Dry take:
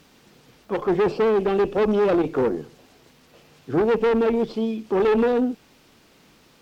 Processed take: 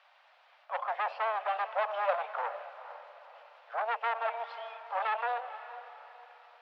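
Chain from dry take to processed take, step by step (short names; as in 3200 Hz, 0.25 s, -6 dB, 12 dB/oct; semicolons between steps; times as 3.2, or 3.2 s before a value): steep high-pass 600 Hz 72 dB/oct; air absorption 390 m; diffused feedback echo 0.468 s, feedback 42%, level -13 dB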